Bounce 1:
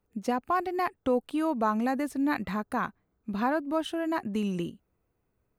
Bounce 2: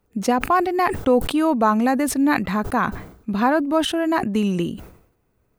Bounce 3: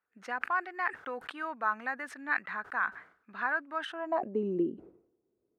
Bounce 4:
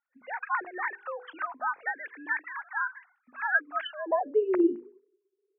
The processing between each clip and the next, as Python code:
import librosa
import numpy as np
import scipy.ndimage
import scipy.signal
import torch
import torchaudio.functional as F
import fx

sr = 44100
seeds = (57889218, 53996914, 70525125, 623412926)

y1 = fx.sustainer(x, sr, db_per_s=87.0)
y1 = y1 * 10.0 ** (9.0 / 20.0)
y2 = fx.filter_sweep_bandpass(y1, sr, from_hz=1600.0, to_hz=360.0, start_s=3.85, end_s=4.41, q=3.5)
y2 = y2 * 10.0 ** (-2.5 / 20.0)
y3 = fx.sine_speech(y2, sr)
y3 = fx.hum_notches(y3, sr, base_hz=50, count=10)
y3 = y3 * 10.0 ** (4.0 / 20.0)